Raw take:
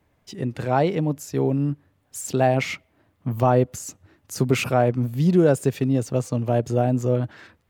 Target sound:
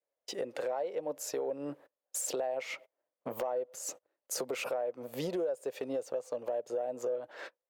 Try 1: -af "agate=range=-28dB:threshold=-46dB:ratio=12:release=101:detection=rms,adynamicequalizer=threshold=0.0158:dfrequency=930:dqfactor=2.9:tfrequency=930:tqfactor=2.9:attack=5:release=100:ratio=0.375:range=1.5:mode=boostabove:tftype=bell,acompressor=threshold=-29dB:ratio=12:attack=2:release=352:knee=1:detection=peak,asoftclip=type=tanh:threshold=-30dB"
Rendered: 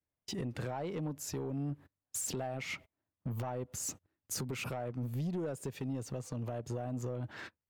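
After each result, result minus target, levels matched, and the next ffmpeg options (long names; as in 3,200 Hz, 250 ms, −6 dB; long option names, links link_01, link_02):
soft clipping: distortion +15 dB; 500 Hz band −5.5 dB
-af "agate=range=-28dB:threshold=-46dB:ratio=12:release=101:detection=rms,adynamicequalizer=threshold=0.0158:dfrequency=930:dqfactor=2.9:tfrequency=930:tqfactor=2.9:attack=5:release=100:ratio=0.375:range=1.5:mode=boostabove:tftype=bell,acompressor=threshold=-29dB:ratio=12:attack=2:release=352:knee=1:detection=peak,asoftclip=type=tanh:threshold=-20.5dB"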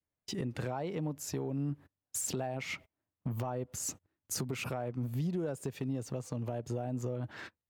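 500 Hz band −5.5 dB
-af "agate=range=-28dB:threshold=-46dB:ratio=12:release=101:detection=rms,adynamicequalizer=threshold=0.0158:dfrequency=930:dqfactor=2.9:tfrequency=930:tqfactor=2.9:attack=5:release=100:ratio=0.375:range=1.5:mode=boostabove:tftype=bell,highpass=frequency=530:width_type=q:width=5.1,acompressor=threshold=-29dB:ratio=12:attack=2:release=352:knee=1:detection=peak,asoftclip=type=tanh:threshold=-20.5dB"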